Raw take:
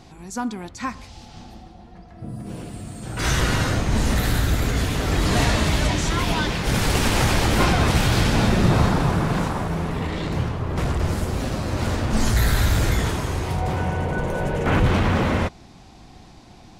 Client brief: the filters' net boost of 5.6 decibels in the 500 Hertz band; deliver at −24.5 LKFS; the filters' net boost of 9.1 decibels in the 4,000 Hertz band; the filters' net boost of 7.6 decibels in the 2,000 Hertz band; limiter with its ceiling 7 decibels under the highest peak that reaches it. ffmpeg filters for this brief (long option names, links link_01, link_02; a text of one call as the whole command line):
ffmpeg -i in.wav -af "equalizer=frequency=500:width_type=o:gain=6.5,equalizer=frequency=2000:width_type=o:gain=7,equalizer=frequency=4000:width_type=o:gain=9,volume=-4.5dB,alimiter=limit=-14.5dB:level=0:latency=1" out.wav